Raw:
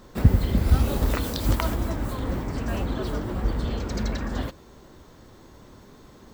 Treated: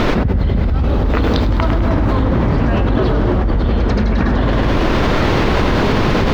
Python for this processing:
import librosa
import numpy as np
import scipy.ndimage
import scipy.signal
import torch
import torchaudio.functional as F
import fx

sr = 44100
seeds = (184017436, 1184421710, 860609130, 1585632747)

p1 = x + fx.echo_feedback(x, sr, ms=103, feedback_pct=55, wet_db=-8.5, dry=0)
p2 = fx.dmg_noise_colour(p1, sr, seeds[0], colour='pink', level_db=-47.0)
p3 = fx.air_absorb(p2, sr, metres=260.0)
p4 = fx.env_flatten(p3, sr, amount_pct=100)
y = F.gain(torch.from_numpy(p4), -3.5).numpy()